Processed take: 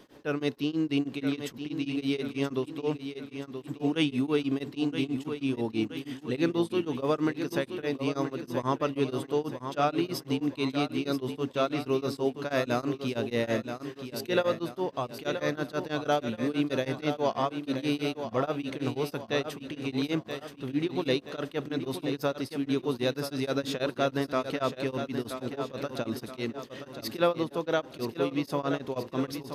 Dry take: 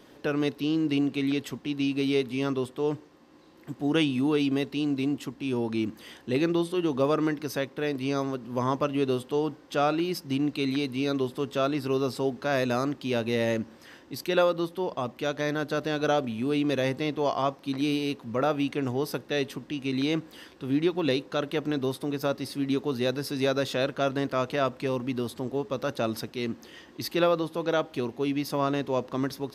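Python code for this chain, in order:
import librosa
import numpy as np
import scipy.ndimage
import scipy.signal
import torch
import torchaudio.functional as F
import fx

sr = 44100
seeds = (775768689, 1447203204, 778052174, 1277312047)

p1 = x + fx.echo_feedback(x, sr, ms=977, feedback_pct=48, wet_db=-8.5, dry=0)
y = p1 * np.abs(np.cos(np.pi * 6.2 * np.arange(len(p1)) / sr))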